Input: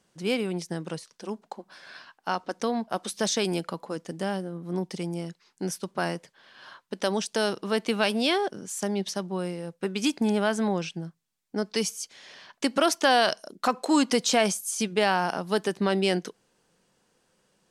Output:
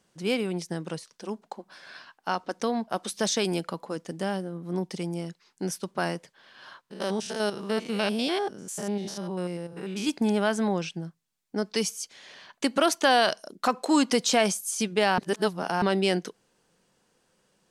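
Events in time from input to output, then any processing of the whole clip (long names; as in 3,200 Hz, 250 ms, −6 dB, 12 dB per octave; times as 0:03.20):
0:06.81–0:10.09: spectrum averaged block by block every 100 ms
0:12.18–0:13.37: notch filter 5,300 Hz
0:15.18–0:15.82: reverse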